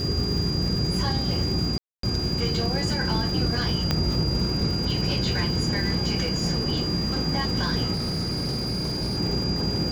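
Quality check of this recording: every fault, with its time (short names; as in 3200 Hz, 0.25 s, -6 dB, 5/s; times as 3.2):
crackle 370/s -34 dBFS
hum 60 Hz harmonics 6 -31 dBFS
tone 4800 Hz -29 dBFS
1.78–2.03 gap 0.253 s
3.91 pop -8 dBFS
7.93–9.17 clipped -23.5 dBFS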